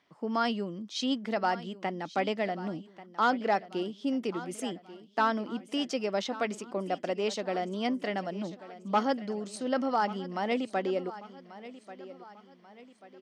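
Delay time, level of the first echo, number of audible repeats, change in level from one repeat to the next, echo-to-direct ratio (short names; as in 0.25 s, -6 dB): 1.138 s, -16.0 dB, 3, -7.0 dB, -15.0 dB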